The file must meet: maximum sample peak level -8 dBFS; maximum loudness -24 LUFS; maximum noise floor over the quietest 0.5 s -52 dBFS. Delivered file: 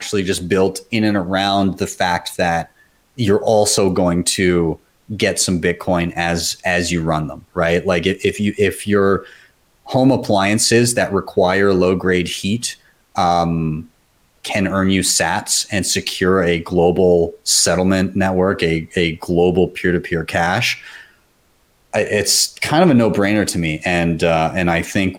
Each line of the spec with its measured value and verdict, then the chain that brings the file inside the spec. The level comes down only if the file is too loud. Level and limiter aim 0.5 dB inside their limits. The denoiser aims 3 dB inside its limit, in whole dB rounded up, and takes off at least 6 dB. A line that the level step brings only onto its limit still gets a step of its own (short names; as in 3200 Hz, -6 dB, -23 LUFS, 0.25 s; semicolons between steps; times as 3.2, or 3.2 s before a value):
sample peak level -3.5 dBFS: fail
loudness -16.5 LUFS: fail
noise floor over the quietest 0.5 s -58 dBFS: OK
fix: gain -8 dB